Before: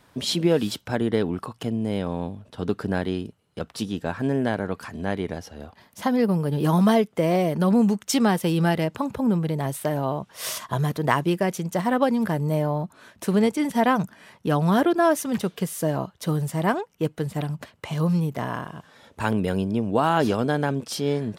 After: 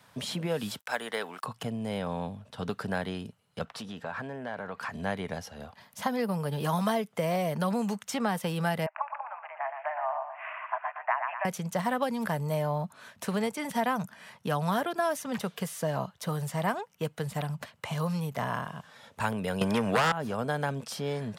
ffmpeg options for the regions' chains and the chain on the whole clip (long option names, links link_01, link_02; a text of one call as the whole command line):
ffmpeg -i in.wav -filter_complex "[0:a]asettb=1/sr,asplit=3[link_01][link_02][link_03];[link_01]atrim=end=0.794[link_04];[link_02]atrim=start=0.79:end=1.44,asetpts=PTS-STARTPTS,afade=type=in:duration=0.004:curve=qsin,afade=type=out:start_time=0.646:duration=0.004:curve=qsin,highpass=380,tiltshelf=frequency=820:gain=-7,aeval=exprs='sgn(val(0))*max(abs(val(0))-0.0015,0)':channel_layout=same[link_05];[link_03]atrim=start=1.436[link_06];[link_04][link_05]acrossfade=duration=0.004:curve1=hsin:curve2=qsin[link_07];[link_07][link_06]acrossfade=duration=0.004:curve1=qsin:curve2=hsin,asettb=1/sr,asplit=3[link_08][link_09][link_10];[link_08]atrim=end=3.654[link_11];[link_09]atrim=start=3.65:end=4.92,asetpts=PTS-STARTPTS,afade=type=in:duration=0.004:curve=qsin,afade=type=out:start_time=1.266:duration=0.004:curve=qsin,acompressor=threshold=-30dB:ratio=4:attack=3.2:release=140:knee=1:detection=peak,asplit=2[link_12][link_13];[link_13]highpass=frequency=720:poles=1,volume=12dB,asoftclip=type=tanh:threshold=-18dB[link_14];[link_12][link_14]amix=inputs=2:normalize=0,lowpass=frequency=1600:poles=1,volume=-6dB[link_15];[link_10]atrim=start=4.916[link_16];[link_11][link_15]acrossfade=duration=0.004:curve1=hsin:curve2=qsin[link_17];[link_17][link_16]acrossfade=duration=0.004:curve1=qsin:curve2=hsin,asettb=1/sr,asplit=3[link_18][link_19][link_20];[link_18]atrim=end=8.864[link_21];[link_19]atrim=start=8.86:end=11.45,asetpts=PTS-STARTPTS,afade=type=in:duration=0.004:curve=qsin,afade=type=out:start_time=2.586:duration=0.004:curve=qsin,asuperpass=centerf=1300:order=20:qfactor=0.65,aecho=1:1:118|236|354|472:0.422|0.152|0.0547|0.0197,atrim=end_sample=114219[link_22];[link_20]atrim=start=11.446[link_23];[link_21][link_22]acrossfade=duration=0.004:curve1=hsin:curve2=qsin[link_24];[link_24][link_23]acrossfade=duration=0.004:curve1=qsin:curve2=hsin,asettb=1/sr,asplit=3[link_25][link_26][link_27];[link_25]atrim=end=19.614[link_28];[link_26]atrim=start=19.61:end=20.12,asetpts=PTS-STARTPTS,afade=type=in:duration=0.004:curve=qsin,afade=type=out:start_time=0.506:duration=0.004:curve=qsin,equalizer=frequency=1800:width=0.68:gain=11.5,aeval=exprs='0.794*sin(PI/2*3.55*val(0)/0.794)':channel_layout=same[link_29];[link_27]atrim=start=20.116[link_30];[link_28][link_29]acrossfade=duration=0.004:curve1=hsin:curve2=qsin[link_31];[link_31][link_30]acrossfade=duration=0.004:curve1=qsin:curve2=hsin,acrossover=split=350|2200|7100[link_32][link_33][link_34][link_35];[link_32]acompressor=threshold=-29dB:ratio=4[link_36];[link_33]acompressor=threshold=-25dB:ratio=4[link_37];[link_34]acompressor=threshold=-44dB:ratio=4[link_38];[link_35]acompressor=threshold=-45dB:ratio=4[link_39];[link_36][link_37][link_38][link_39]amix=inputs=4:normalize=0,highpass=110,equalizer=frequency=330:width=2:gain=-13" out.wav